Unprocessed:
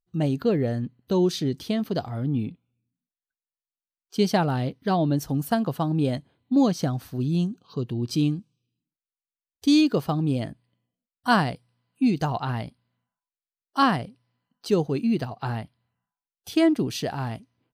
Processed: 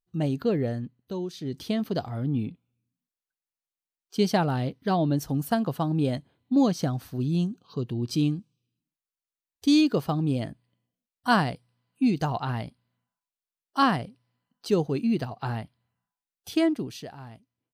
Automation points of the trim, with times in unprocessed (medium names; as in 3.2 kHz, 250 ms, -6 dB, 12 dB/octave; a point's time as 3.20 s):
0.68 s -2.5 dB
1.33 s -13 dB
1.60 s -1.5 dB
16.53 s -1.5 dB
17.18 s -13.5 dB